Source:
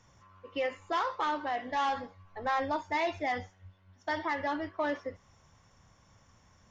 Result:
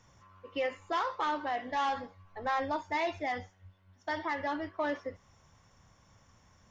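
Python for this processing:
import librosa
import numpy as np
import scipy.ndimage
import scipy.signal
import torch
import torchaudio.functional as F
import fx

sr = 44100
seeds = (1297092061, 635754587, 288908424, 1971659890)

y = fx.rider(x, sr, range_db=10, speed_s=2.0)
y = y * 10.0 ** (-1.0 / 20.0)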